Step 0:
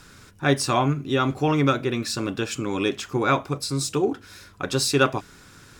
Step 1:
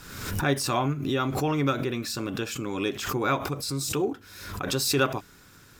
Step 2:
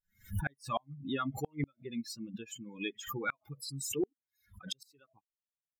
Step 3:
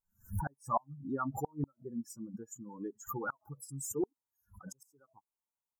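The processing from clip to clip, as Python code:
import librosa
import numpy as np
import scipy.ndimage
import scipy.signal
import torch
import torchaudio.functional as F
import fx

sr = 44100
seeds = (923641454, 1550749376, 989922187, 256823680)

y1 = fx.peak_eq(x, sr, hz=14000.0, db=14.5, octaves=0.23)
y1 = fx.pre_swell(y1, sr, db_per_s=53.0)
y1 = y1 * 10.0 ** (-5.0 / 20.0)
y2 = fx.bin_expand(y1, sr, power=3.0)
y2 = fx.gate_flip(y2, sr, shuts_db=-22.0, range_db=-37)
y3 = scipy.signal.sosfilt(scipy.signal.cheby2(4, 40, [2000.0, 4400.0], 'bandstop', fs=sr, output='sos'), y2)
y3 = fx.peak_eq(y3, sr, hz=910.0, db=11.5, octaves=0.38)
y3 = y3 * 10.0 ** (-1.0 / 20.0)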